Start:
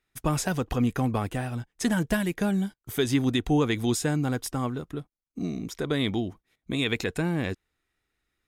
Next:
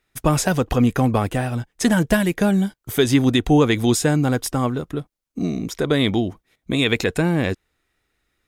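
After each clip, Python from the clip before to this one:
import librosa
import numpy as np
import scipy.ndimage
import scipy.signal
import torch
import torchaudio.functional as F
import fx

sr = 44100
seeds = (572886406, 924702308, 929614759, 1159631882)

y = fx.peak_eq(x, sr, hz=560.0, db=3.0, octaves=0.56)
y = y * librosa.db_to_amplitude(7.5)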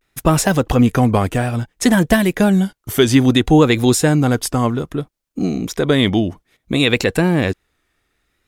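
y = fx.vibrato(x, sr, rate_hz=0.6, depth_cents=81.0)
y = y * librosa.db_to_amplitude(4.0)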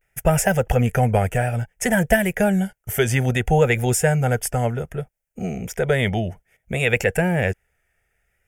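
y = fx.fixed_phaser(x, sr, hz=1100.0, stages=6)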